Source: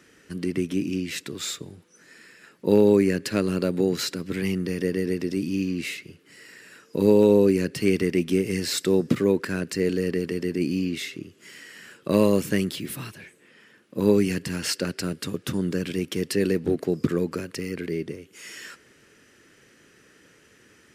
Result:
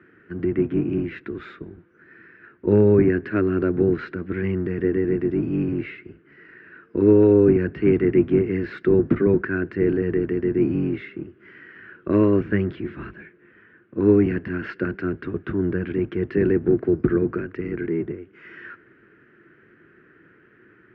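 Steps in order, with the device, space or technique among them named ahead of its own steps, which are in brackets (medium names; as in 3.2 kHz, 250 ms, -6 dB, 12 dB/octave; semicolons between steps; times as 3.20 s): sub-octave bass pedal (octave divider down 1 oct, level +1 dB; cabinet simulation 70–2100 Hz, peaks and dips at 80 Hz -9 dB, 130 Hz -4 dB, 350 Hz +9 dB, 540 Hz -6 dB, 840 Hz -5 dB, 1.5 kHz +8 dB)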